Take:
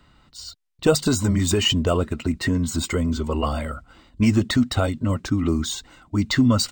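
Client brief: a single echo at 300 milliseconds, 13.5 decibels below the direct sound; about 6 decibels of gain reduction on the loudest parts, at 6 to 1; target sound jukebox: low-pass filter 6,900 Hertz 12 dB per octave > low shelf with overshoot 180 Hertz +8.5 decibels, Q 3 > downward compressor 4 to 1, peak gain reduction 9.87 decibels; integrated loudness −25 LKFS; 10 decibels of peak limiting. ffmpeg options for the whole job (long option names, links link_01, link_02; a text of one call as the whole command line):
ffmpeg -i in.wav -af "acompressor=threshold=-19dB:ratio=6,alimiter=limit=-21dB:level=0:latency=1,lowpass=6900,lowshelf=frequency=180:width_type=q:width=3:gain=8.5,aecho=1:1:300:0.211,acompressor=threshold=-26dB:ratio=4,volume=5.5dB" out.wav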